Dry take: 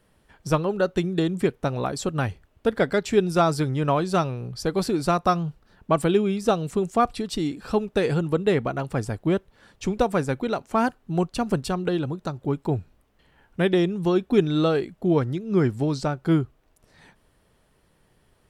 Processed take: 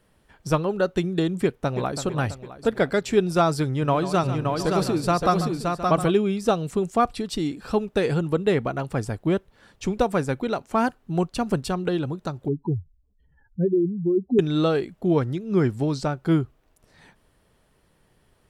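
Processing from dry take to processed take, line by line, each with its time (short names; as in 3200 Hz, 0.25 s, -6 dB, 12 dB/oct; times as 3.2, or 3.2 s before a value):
1.43–2.01 echo throw 0.33 s, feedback 55%, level -10 dB
3.66–6.12 tapped delay 0.142/0.571/0.713 s -12/-4/-13.5 dB
12.48–14.39 spectral contrast raised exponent 2.9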